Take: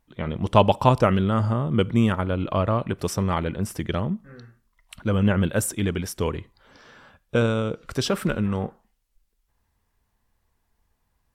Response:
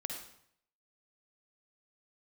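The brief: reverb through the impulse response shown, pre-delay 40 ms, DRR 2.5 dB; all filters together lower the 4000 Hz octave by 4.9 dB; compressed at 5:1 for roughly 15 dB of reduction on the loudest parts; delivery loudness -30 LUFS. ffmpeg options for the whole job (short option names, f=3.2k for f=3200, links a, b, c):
-filter_complex "[0:a]equalizer=f=4k:t=o:g=-7,acompressor=threshold=-29dB:ratio=5,asplit=2[a][b];[1:a]atrim=start_sample=2205,adelay=40[c];[b][c]afir=irnorm=-1:irlink=0,volume=-2.5dB[d];[a][d]amix=inputs=2:normalize=0,volume=1.5dB"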